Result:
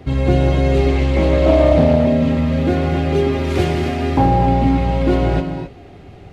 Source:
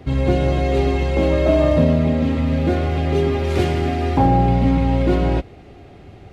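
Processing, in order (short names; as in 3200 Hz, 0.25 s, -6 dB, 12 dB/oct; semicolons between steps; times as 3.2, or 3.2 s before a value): non-linear reverb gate 0.29 s rising, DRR 7 dB; 0.88–2.06 Doppler distortion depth 0.22 ms; gain +1.5 dB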